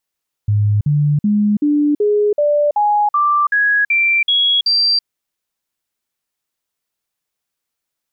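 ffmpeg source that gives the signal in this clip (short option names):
-f lavfi -i "aevalsrc='0.282*clip(min(mod(t,0.38),0.33-mod(t,0.38))/0.005,0,1)*sin(2*PI*104*pow(2,floor(t/0.38)/2)*mod(t,0.38))':d=4.56:s=44100"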